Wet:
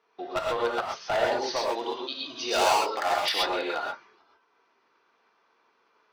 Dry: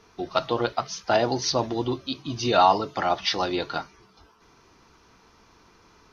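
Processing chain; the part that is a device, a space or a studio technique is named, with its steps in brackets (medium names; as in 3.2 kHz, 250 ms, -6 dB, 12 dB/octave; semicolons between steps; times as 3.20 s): walkie-talkie (band-pass 490–3000 Hz; hard clipper -21.5 dBFS, distortion -7 dB; gate -57 dBFS, range -10 dB); 1.56–3.32 s: tone controls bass -8 dB, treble +10 dB; gated-style reverb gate 150 ms rising, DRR -1.5 dB; trim -1.5 dB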